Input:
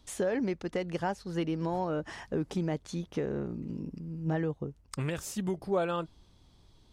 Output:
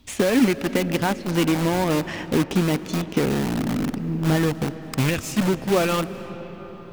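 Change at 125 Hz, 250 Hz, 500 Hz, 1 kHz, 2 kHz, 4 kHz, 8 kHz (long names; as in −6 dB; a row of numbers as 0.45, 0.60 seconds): +11.0, +12.5, +9.0, +9.5, +14.0, +16.5, +12.5 decibels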